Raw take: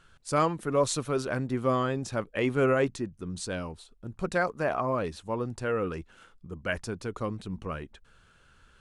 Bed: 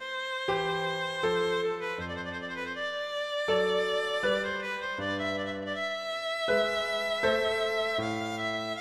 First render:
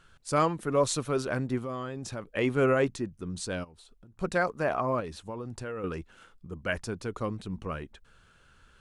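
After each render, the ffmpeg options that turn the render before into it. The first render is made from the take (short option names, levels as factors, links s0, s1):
-filter_complex "[0:a]asettb=1/sr,asplit=3[s0][s1][s2];[s0]atrim=end=1.584[s3];[s1]atrim=start=1.58:end=2.3,asetpts=PTS-STARTPTS,afade=t=in:d=0.004:c=qsin,afade=t=out:st=0.716:d=0.004:c=qsin,acompressor=threshold=0.0224:ratio=4:attack=3.2:release=140:knee=1:detection=peak[s4];[s2]atrim=start=2.296[s5];[s3][s4]acrossfade=d=0.004:c1=hsin:c2=qsin[s6];[s6][s5]acrossfade=d=0.004:c1=qsin:c2=hsin,asplit=3[s7][s8][s9];[s7]afade=t=out:st=3.63:d=0.02[s10];[s8]acompressor=threshold=0.00355:ratio=20:attack=3.2:release=140:knee=1:detection=peak,afade=t=in:st=3.63:d=0.02,afade=t=out:st=4.19:d=0.02[s11];[s9]afade=t=in:st=4.19:d=0.02[s12];[s10][s11][s12]amix=inputs=3:normalize=0,asettb=1/sr,asplit=3[s13][s14][s15];[s13]atrim=end=5.004[s16];[s14]atrim=start=5:end=5.84,asetpts=PTS-STARTPTS,afade=t=in:d=0.004:c=qsin,afade=t=out:st=0.836:d=0.004:c=qsin,acompressor=threshold=0.0224:ratio=6:attack=3.2:release=140:knee=1:detection=peak[s17];[s15]atrim=start=5.836[s18];[s16][s17]acrossfade=d=0.004:c1=hsin:c2=qsin[s19];[s19][s18]acrossfade=d=0.004:c1=qsin:c2=hsin"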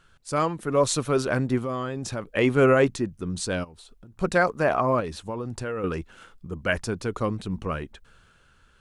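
-af "dynaudnorm=f=140:g=11:m=2"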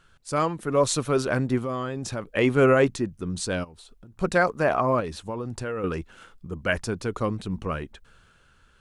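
-af anull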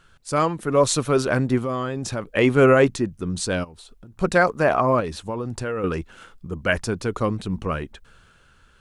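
-af "volume=1.5"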